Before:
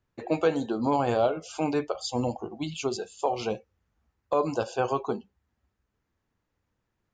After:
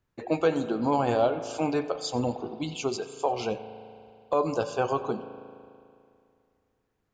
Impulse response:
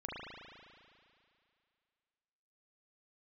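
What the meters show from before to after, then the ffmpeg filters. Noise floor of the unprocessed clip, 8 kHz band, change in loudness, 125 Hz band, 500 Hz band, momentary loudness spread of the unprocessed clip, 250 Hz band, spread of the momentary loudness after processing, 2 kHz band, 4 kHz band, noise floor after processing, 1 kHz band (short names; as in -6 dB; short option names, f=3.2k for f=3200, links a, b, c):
-80 dBFS, 0.0 dB, +0.5 dB, 0.0 dB, +0.5 dB, 9 LU, +0.5 dB, 11 LU, +0.5 dB, 0.0 dB, -77 dBFS, +0.5 dB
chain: -filter_complex "[0:a]asplit=2[a][b];[1:a]atrim=start_sample=2205,asetrate=43659,aresample=44100,adelay=92[c];[b][c]afir=irnorm=-1:irlink=0,volume=-14dB[d];[a][d]amix=inputs=2:normalize=0"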